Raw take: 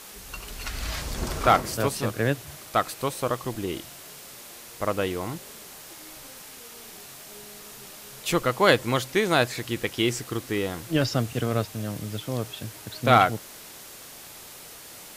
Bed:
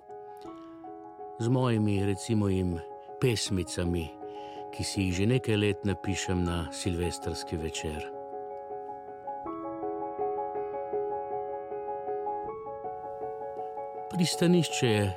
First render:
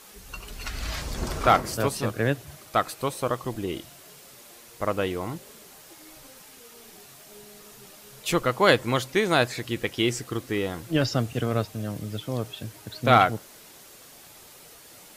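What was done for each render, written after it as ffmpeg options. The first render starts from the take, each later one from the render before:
-af "afftdn=nr=6:nf=-44"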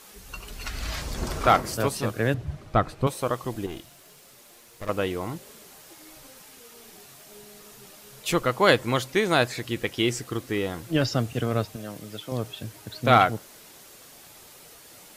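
-filter_complex "[0:a]asettb=1/sr,asplit=3[s0][s1][s2];[s0]atrim=end=2.344[s3];[s1]atrim=start=2.34:end=3.07,asetpts=PTS-STARTPTS,afade=t=in:d=0.004:c=qsin,afade=t=out:st=0.726:d=0.004:c=qsin,aemphasis=mode=reproduction:type=riaa[s4];[s2]atrim=start=3.066[s5];[s3][s4]acrossfade=d=0.004:c1=hsin:c2=qsin[s6];[s6][s5]acrossfade=d=0.004:c1=qsin:c2=hsin,asettb=1/sr,asplit=3[s7][s8][s9];[s7]atrim=end=3.664[s10];[s8]atrim=start=3.66:end=4.89,asetpts=PTS-STARTPTS,afade=t=in:d=0.004:c=qsin,afade=t=out:st=1.226:d=0.004:c=qsin,aeval=exprs='(tanh(35.5*val(0)+0.65)-tanh(0.65))/35.5':c=same[s11];[s9]atrim=start=4.886[s12];[s10][s11]acrossfade=d=0.004:c1=hsin:c2=qsin[s13];[s13][s12]acrossfade=d=0.004:c1=qsin:c2=hsin,asettb=1/sr,asplit=3[s14][s15][s16];[s14]atrim=end=11.764[s17];[s15]atrim=start=11.76:end=12.32,asetpts=PTS-STARTPTS,afade=t=in:d=0.004:c=qsin,afade=t=out:st=0.556:d=0.004:c=qsin,highpass=f=350:p=1[s18];[s16]atrim=start=12.316[s19];[s17][s18]acrossfade=d=0.004:c1=hsin:c2=qsin[s20];[s20][s19]acrossfade=d=0.004:c1=qsin:c2=hsin"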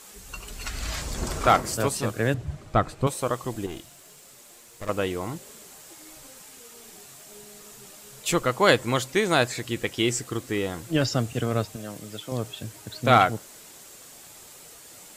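-af "equalizer=f=7600:t=o:w=0.44:g=7.5"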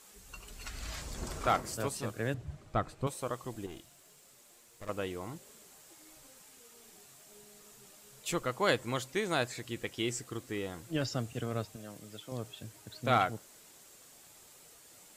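-af "volume=0.316"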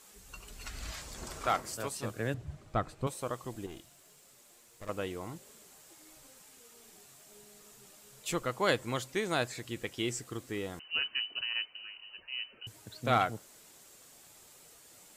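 -filter_complex "[0:a]asettb=1/sr,asplit=3[s0][s1][s2];[s0]atrim=end=0.914[s3];[s1]atrim=start=0.91:end=2.03,asetpts=PTS-STARTPTS,afade=t=in:d=0.004:c=qsin,afade=t=out:st=1.116:d=0.004:c=qsin,lowshelf=f=430:g=-6.5[s4];[s2]atrim=start=2.026[s5];[s3][s4]acrossfade=d=0.004:c1=hsin:c2=qsin[s6];[s6][s5]acrossfade=d=0.004:c1=qsin:c2=hsin,asettb=1/sr,asplit=3[s7][s8][s9];[s7]atrim=end=10.794[s10];[s8]atrim=start=10.79:end=12.67,asetpts=PTS-STARTPTS,afade=t=in:d=0.004:c=qsin,afade=t=out:st=1.876:d=0.004:c=qsin,lowpass=f=2600:t=q:w=0.5098,lowpass=f=2600:t=q:w=0.6013,lowpass=f=2600:t=q:w=0.9,lowpass=f=2600:t=q:w=2.563,afreqshift=-3100[s11];[s9]atrim=start=12.666[s12];[s10][s11]acrossfade=d=0.004:c1=hsin:c2=qsin[s13];[s13][s12]acrossfade=d=0.004:c1=qsin:c2=hsin"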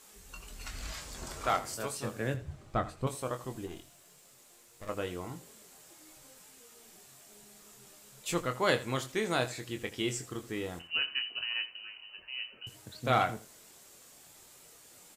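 -filter_complex "[0:a]asplit=2[s0][s1];[s1]adelay=23,volume=0.422[s2];[s0][s2]amix=inputs=2:normalize=0,aecho=1:1:81|162:0.158|0.0269"

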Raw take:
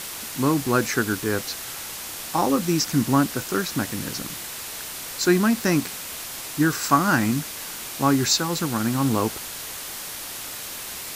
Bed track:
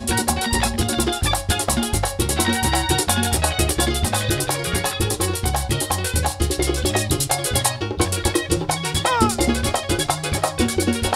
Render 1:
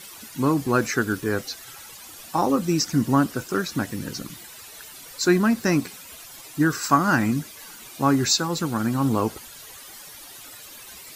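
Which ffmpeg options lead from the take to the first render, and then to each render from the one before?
-af "afftdn=nr=13:nf=-35"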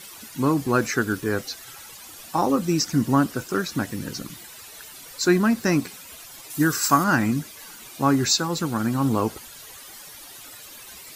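-filter_complex "[0:a]asettb=1/sr,asplit=3[s0][s1][s2];[s0]atrim=end=6.504[s3];[s1]atrim=start=6.5:end=7.04,asetpts=PTS-STARTPTS,afade=t=in:d=0.004:c=qsin,afade=t=out:st=0.536:d=0.004:c=qsin,aemphasis=mode=production:type=cd[s4];[s2]atrim=start=7.036[s5];[s3][s4]acrossfade=d=0.004:c1=hsin:c2=qsin[s6];[s6][s5]acrossfade=d=0.004:c1=qsin:c2=hsin"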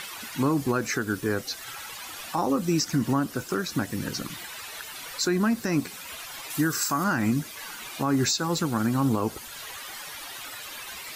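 -filter_complex "[0:a]acrossover=split=680|3800[s0][s1][s2];[s1]acompressor=mode=upward:threshold=0.0251:ratio=2.5[s3];[s0][s3][s2]amix=inputs=3:normalize=0,alimiter=limit=0.178:level=0:latency=1:release=158"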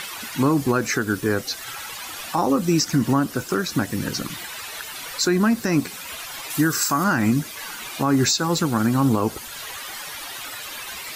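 -af "volume=1.78"

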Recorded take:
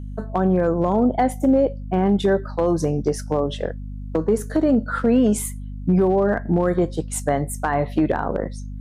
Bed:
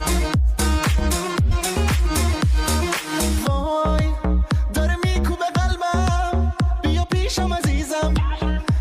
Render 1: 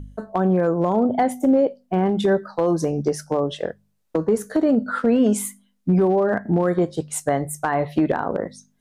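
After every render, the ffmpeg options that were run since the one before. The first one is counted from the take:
-af "bandreject=f=50:t=h:w=4,bandreject=f=100:t=h:w=4,bandreject=f=150:t=h:w=4,bandreject=f=200:t=h:w=4,bandreject=f=250:t=h:w=4"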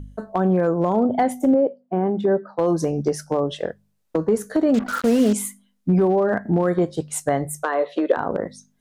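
-filter_complex "[0:a]asettb=1/sr,asplit=3[s0][s1][s2];[s0]atrim=end=1.544[s3];[s1]atrim=start=1.54:end=2.59,asetpts=PTS-STARTPTS,afade=t=in:d=0.004:c=qsin,afade=t=out:st=1.046:d=0.004:c=qsin,bandpass=f=420:t=q:w=0.56[s4];[s2]atrim=start=2.586[s5];[s3][s4]acrossfade=d=0.004:c1=hsin:c2=qsin[s6];[s6][s5]acrossfade=d=0.004:c1=qsin:c2=hsin,asettb=1/sr,asplit=3[s7][s8][s9];[s7]atrim=end=4.744[s10];[s8]atrim=start=4.74:end=5.33,asetpts=PTS-STARTPTS,afade=t=in:d=0.004:c=qsin,afade=t=out:st=0.586:d=0.004:c=qsin,acrusher=bits=4:mix=0:aa=0.5[s11];[s9]atrim=start=5.326[s12];[s10][s11]acrossfade=d=0.004:c1=hsin:c2=qsin[s13];[s13][s12]acrossfade=d=0.004:c1=qsin:c2=hsin,asettb=1/sr,asplit=3[s14][s15][s16];[s14]atrim=end=7.634[s17];[s15]atrim=start=7.63:end=8.17,asetpts=PTS-STARTPTS,afade=t=in:d=0.004:c=qsin,afade=t=out:st=0.536:d=0.004:c=qsin,highpass=f=330:w=0.5412,highpass=f=330:w=1.3066,equalizer=f=510:t=q:w=4:g=9,equalizer=f=800:t=q:w=4:g=-8,equalizer=f=1200:t=q:w=4:g=3,equalizer=f=2200:t=q:w=4:g=-4,equalizer=f=3600:t=q:w=4:g=5,equalizer=f=5200:t=q:w=4:g=-4,lowpass=f=8000:w=0.5412,lowpass=f=8000:w=1.3066[s18];[s16]atrim=start=8.166[s19];[s17][s18]acrossfade=d=0.004:c1=hsin:c2=qsin[s20];[s20][s19]acrossfade=d=0.004:c1=qsin:c2=hsin"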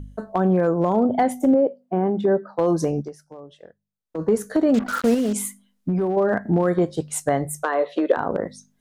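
-filter_complex "[0:a]asettb=1/sr,asplit=3[s0][s1][s2];[s0]atrim=end=5.144[s3];[s1]atrim=start=5.14:end=6.17,asetpts=PTS-STARTPTS,afade=t=in:d=0.004:c=qsin,afade=t=out:st=1.026:d=0.004:c=qsin,acompressor=threshold=0.126:ratio=6:attack=3.2:release=140:knee=1:detection=peak[s4];[s2]atrim=start=6.166[s5];[s3][s4]acrossfade=d=0.004:c1=hsin:c2=qsin[s6];[s6][s5]acrossfade=d=0.004:c1=qsin:c2=hsin,asplit=3[s7][s8][s9];[s7]atrim=end=3.49,asetpts=PTS-STARTPTS,afade=t=out:st=2.99:d=0.5:c=exp:silence=0.112202[s10];[s8]atrim=start=3.49:end=3.72,asetpts=PTS-STARTPTS,volume=0.112[s11];[s9]atrim=start=3.72,asetpts=PTS-STARTPTS,afade=t=in:d=0.5:c=exp:silence=0.112202[s12];[s10][s11][s12]concat=n=3:v=0:a=1"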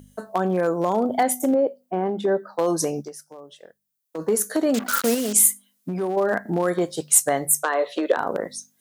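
-af "highpass=f=350:p=1,aemphasis=mode=production:type=75kf"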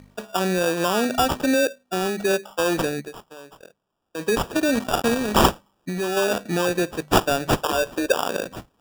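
-af "acrusher=samples=21:mix=1:aa=0.000001"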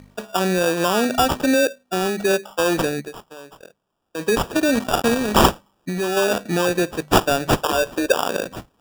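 -af "volume=1.33,alimiter=limit=0.708:level=0:latency=1"

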